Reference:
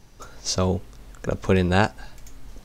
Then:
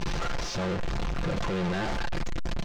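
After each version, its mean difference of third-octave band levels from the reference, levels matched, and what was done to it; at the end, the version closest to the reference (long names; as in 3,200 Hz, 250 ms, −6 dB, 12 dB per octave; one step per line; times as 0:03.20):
13.5 dB: sign of each sample alone
comb filter 5.8 ms, depth 44%
brickwall limiter −32 dBFS, peak gain reduction 25 dB
high-frequency loss of the air 150 metres
level +6.5 dB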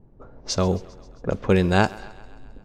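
4.5 dB: low-shelf EQ 130 Hz −10 dB
low-pass that shuts in the quiet parts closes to 520 Hz, open at −21 dBFS
low-shelf EQ 320 Hz +6.5 dB
on a send: feedback echo with a high-pass in the loop 133 ms, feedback 64%, high-pass 230 Hz, level −21 dB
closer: second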